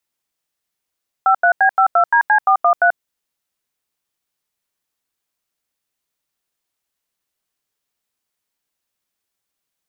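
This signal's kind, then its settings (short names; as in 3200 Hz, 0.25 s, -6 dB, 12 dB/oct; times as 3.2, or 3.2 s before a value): DTMF "53B52DC413", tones 87 ms, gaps 86 ms, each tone -12 dBFS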